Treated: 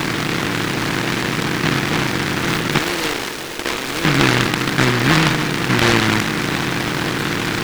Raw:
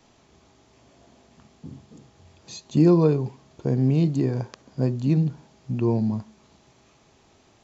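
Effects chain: spectral levelling over time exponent 0.2; 2.78–4.05 s: high-pass 530 Hz 12 dB/octave; delay time shaken by noise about 1.5 kHz, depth 0.45 ms

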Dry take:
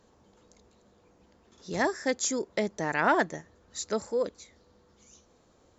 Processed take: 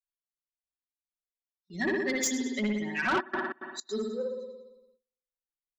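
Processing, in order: expander on every frequency bin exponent 3; 1.82–2.23 s: low-pass 4.9 kHz 24 dB/octave; thinning echo 102 ms, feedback 47%, level -16 dB; spring tank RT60 1.1 s, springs 57 ms, chirp 30 ms, DRR -2 dB; gate with hold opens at -53 dBFS; peaking EQ 590 Hz -11.5 dB 1.3 oct; comb 5.3 ms, depth 93%; 3.19–4.04 s: trance gate "x.xx..xx.x" 162 bpm -24 dB; in parallel at -3 dB: compression, threshold -41 dBFS, peak gain reduction 17.5 dB; on the sum: resonant low shelf 190 Hz -11.5 dB, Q 3; saturation -24 dBFS, distortion -13 dB; trim +2 dB

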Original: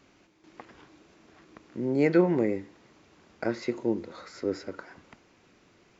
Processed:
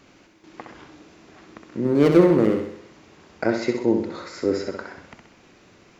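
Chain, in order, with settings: 1.84–2.60 s: median filter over 41 samples; on a send: flutter echo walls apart 11 m, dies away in 0.62 s; on the sum: trim +7 dB

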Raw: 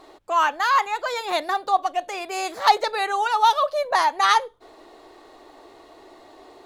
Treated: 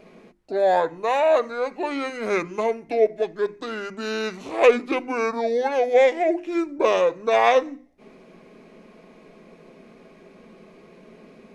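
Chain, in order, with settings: speed mistake 78 rpm record played at 45 rpm; hum notches 50/100/150/200/250/300/350 Hz

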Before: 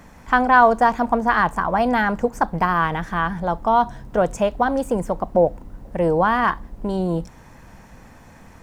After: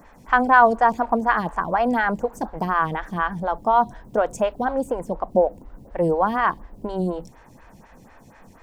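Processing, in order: 4.72–5.31 s: treble shelf 5.3 kHz -5.5 dB; lamp-driven phase shifter 4.1 Hz

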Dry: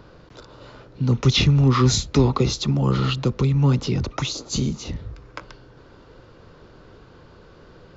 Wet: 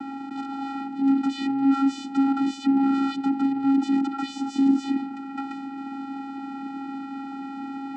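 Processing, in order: overdrive pedal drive 39 dB, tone 1.5 kHz, clips at -5.5 dBFS; vocoder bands 8, square 273 Hz; trim -7.5 dB

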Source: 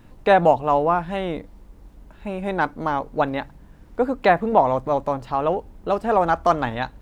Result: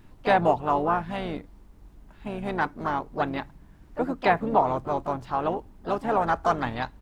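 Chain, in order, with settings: harmony voices -7 st -11 dB, +3 st -13 dB, +4 st -13 dB; peaking EQ 520 Hz -6 dB 0.38 oct; trim -4.5 dB

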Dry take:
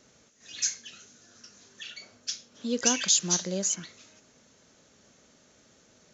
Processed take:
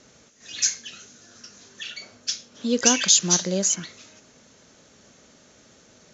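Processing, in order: low-pass 9.6 kHz; trim +6.5 dB

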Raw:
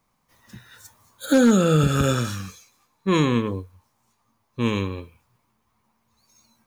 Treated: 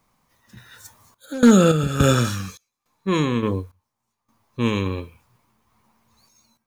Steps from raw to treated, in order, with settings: random-step tremolo, depth 95%; trim +6 dB

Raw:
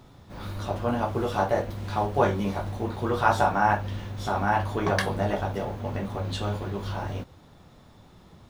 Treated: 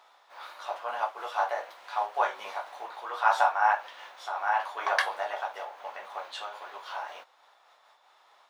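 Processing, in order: high-pass 740 Hz 24 dB/octave; treble shelf 5.2 kHz -11 dB; random flutter of the level, depth 60%; trim +3.5 dB

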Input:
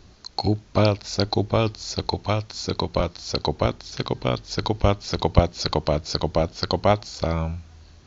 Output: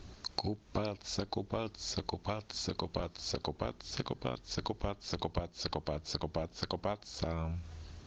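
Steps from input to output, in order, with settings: dynamic bell 110 Hz, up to -6 dB, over -39 dBFS, Q 4.1; compression 6:1, threshold -33 dBFS, peak gain reduction 21 dB; Opus 20 kbps 48 kHz

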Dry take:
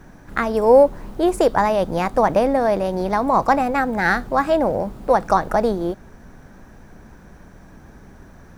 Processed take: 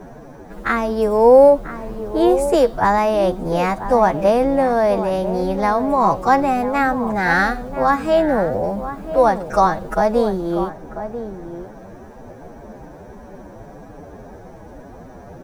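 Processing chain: band noise 83–760 Hz -41 dBFS; time stretch by phase-locked vocoder 1.8×; echo from a far wall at 170 m, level -11 dB; trim +1.5 dB

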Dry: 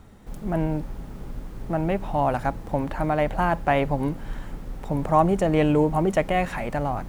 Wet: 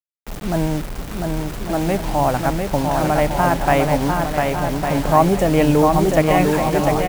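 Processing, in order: word length cut 6-bit, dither none; bouncing-ball echo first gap 700 ms, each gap 0.65×, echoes 5; trim +4.5 dB

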